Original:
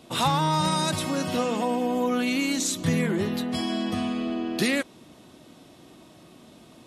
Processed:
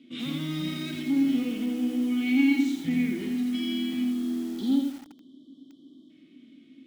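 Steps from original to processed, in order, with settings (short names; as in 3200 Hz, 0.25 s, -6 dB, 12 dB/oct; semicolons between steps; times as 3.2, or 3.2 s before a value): spectral delete 4.04–6.1, 1200–3000 Hz; vowel filter i; in parallel at -4.5 dB: soft clip -31 dBFS, distortion -12 dB; on the sum: harmonic-percussive split harmonic +7 dB; lo-fi delay 84 ms, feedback 35%, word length 7-bit, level -3.5 dB; gain -3.5 dB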